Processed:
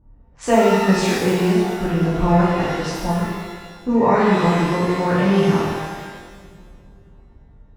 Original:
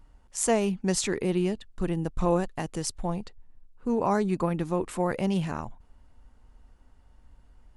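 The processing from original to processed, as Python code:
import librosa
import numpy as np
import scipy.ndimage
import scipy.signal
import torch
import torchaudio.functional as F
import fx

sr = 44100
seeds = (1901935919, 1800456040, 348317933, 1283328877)

y = fx.highpass(x, sr, hz=46.0, slope=6)
y = fx.echo_feedback(y, sr, ms=528, feedback_pct=48, wet_db=-22.5)
y = fx.env_lowpass(y, sr, base_hz=520.0, full_db=-25.5)
y = scipy.signal.sosfilt(scipy.signal.butter(2, 3900.0, 'lowpass', fs=sr, output='sos'), y)
y = fx.rev_shimmer(y, sr, seeds[0], rt60_s=1.3, semitones=12, shimmer_db=-8, drr_db=-8.0)
y = F.gain(torch.from_numpy(y), 2.0).numpy()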